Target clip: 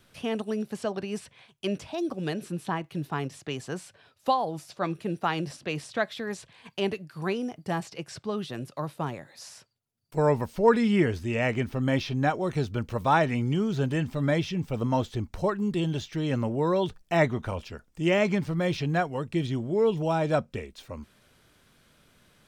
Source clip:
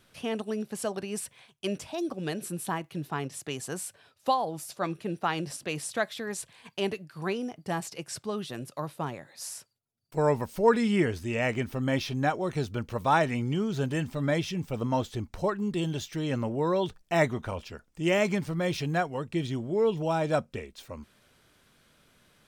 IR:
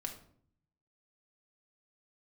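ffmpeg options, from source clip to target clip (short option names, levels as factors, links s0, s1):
-filter_complex "[0:a]acrossover=split=610|5700[s0][s1][s2];[s2]acompressor=threshold=0.00141:ratio=6[s3];[s0][s1][s3]amix=inputs=3:normalize=0,lowshelf=f=220:g=3,volume=1.12"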